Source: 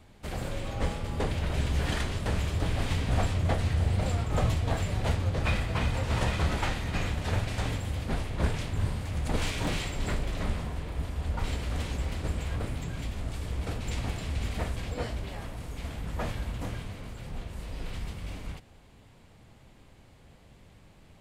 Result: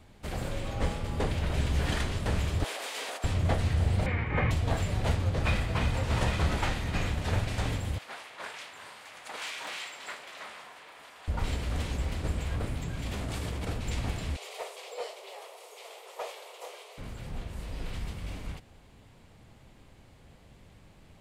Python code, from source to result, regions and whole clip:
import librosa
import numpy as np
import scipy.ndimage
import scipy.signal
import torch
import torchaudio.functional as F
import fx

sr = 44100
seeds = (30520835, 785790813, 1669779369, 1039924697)

y = fx.chain(x, sr, fx.highpass(hz=450.0, slope=24),
    fx.high_shelf(hz=5500.0, db=7.5),
    fx.over_compress(threshold_db=-38.0, ratio=-1.0), at=(2.64, 3.24))
y = fx.chain(y, sr, fx.lowpass_res(hz=2100.0, q=5.7),
    fx.notch_comb(f0_hz=670.0), at=(4.06, 4.51))
y = fx.chain(y, sr, fx.highpass(hz=970.0, slope=12),
    fx.high_shelf(hz=4000.0, db=-5.5), at=(7.98, 11.28))
y = fx.chain(y, sr, fx.highpass(hz=110.0, slope=6),
    fx.env_flatten(amount_pct=100), at=(13.06, 13.65))
y = fx.chain(y, sr, fx.steep_highpass(hz=400.0, slope=72),
    fx.peak_eq(hz=1600.0, db=-11.0, octaves=0.49),
    fx.clip_hard(threshold_db=-27.0), at=(14.36, 16.98))